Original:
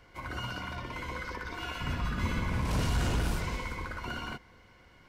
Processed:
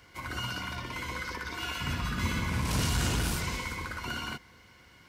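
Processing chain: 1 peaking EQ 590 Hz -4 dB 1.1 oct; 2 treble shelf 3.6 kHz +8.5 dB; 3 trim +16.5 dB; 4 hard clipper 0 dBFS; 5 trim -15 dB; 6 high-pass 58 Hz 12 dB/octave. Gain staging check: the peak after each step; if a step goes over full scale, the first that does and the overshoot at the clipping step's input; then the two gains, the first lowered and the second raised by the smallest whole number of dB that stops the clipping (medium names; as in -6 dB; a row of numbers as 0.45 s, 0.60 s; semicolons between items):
-22.0 dBFS, -20.0 dBFS, -3.5 dBFS, -3.5 dBFS, -18.5 dBFS, -16.5 dBFS; nothing clips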